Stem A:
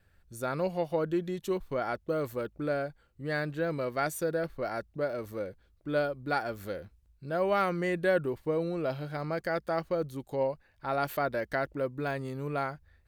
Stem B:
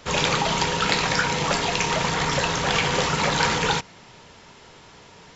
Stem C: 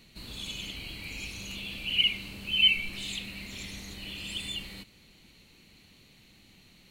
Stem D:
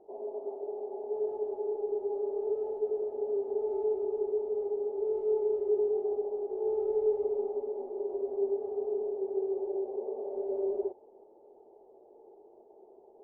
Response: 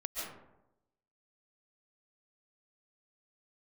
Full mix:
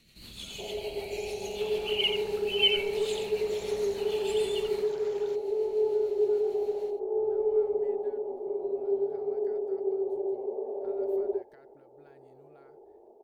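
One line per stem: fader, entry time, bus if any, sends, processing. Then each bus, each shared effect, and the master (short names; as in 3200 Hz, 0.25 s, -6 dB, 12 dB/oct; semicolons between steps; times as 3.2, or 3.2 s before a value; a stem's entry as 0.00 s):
-18.5 dB, 0.00 s, no send, echo send -23.5 dB, compressor, threshold -39 dBFS, peak gain reduction 16 dB
-15.5 dB, 1.55 s, no send, no echo send, compressor, threshold -31 dBFS, peak gain reduction 14 dB; limiter -25.5 dBFS, peak gain reduction 8 dB
-4.5 dB, 0.00 s, no send, echo send -8 dB, rotary speaker horn 6.7 Hz; high shelf 3700 Hz +7 dB
+2.0 dB, 0.50 s, no send, no echo send, dry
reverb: off
echo: echo 86 ms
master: dry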